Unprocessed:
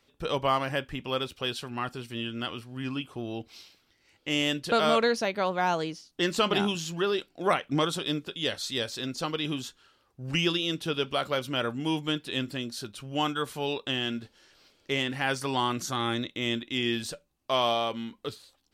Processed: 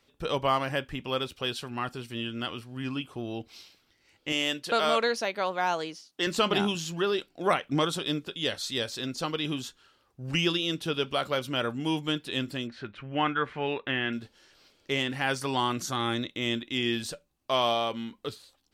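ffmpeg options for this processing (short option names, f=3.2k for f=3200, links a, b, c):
-filter_complex "[0:a]asettb=1/sr,asplit=3[a][b][c];[a]atrim=end=4.324[d];[b]atrim=start=4.32:end=6.27,asetpts=PTS-STARTPTS,afade=t=in:d=0.004:c=qsin,afade=t=out:st=1.946:d=0.004:c=qsin,highpass=f=420:p=1[e];[c]atrim=start=6.266[f];[d][e]acrossfade=d=0.004:c1=hsin:c2=qsin[g];[g][f]acrossfade=d=0.004:c1=qsin:c2=hsin,asettb=1/sr,asplit=3[h][i][j];[h]atrim=end=12.674[k];[i]atrim=start=12.67:end=14.13,asetpts=PTS-STARTPTS,afade=t=in:d=0.004:c=qsin,afade=t=out:st=1.456:d=0.004:c=qsin,lowpass=f=2k:t=q:w=2.7[l];[j]atrim=start=14.126[m];[k][l]acrossfade=d=0.004:c1=hsin:c2=qsin[n];[n][m]acrossfade=d=0.004:c1=qsin:c2=hsin"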